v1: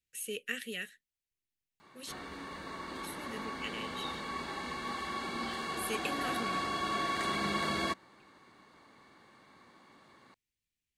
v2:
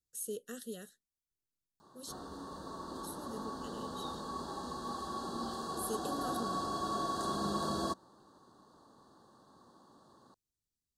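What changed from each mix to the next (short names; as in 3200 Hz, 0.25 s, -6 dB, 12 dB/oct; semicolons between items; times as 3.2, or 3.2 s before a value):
master: add Butterworth band-stop 2300 Hz, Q 0.76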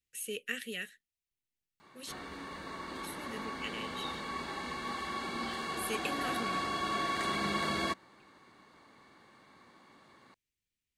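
master: remove Butterworth band-stop 2300 Hz, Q 0.76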